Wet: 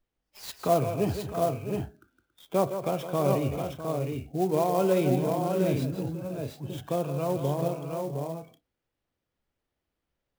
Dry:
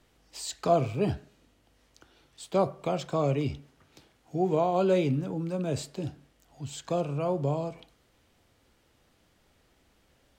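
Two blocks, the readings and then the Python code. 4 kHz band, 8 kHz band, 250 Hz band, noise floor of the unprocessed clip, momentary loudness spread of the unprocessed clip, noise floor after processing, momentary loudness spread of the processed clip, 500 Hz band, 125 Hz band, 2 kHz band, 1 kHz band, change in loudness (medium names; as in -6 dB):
-0.5 dB, -0.5 dB, +2.0 dB, -67 dBFS, 15 LU, -85 dBFS, 11 LU, +2.0 dB, +2.0 dB, +1.5 dB, +1.5 dB, +1.0 dB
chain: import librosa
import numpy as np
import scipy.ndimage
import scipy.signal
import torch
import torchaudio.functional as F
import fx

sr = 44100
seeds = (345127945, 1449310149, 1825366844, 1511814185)

p1 = scipy.signal.sosfilt(scipy.signal.cheby1(3, 1.0, 6300.0, 'lowpass', fs=sr, output='sos'), x)
p2 = fx.noise_reduce_blind(p1, sr, reduce_db=20)
p3 = p2 + fx.echo_multitap(p2, sr, ms=(161, 163, 277, 654, 713, 744), db=(-18.0, -9.5, -17.5, -12.0, -4.5, -15.0), dry=0)
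y = fx.clock_jitter(p3, sr, seeds[0], jitter_ms=0.029)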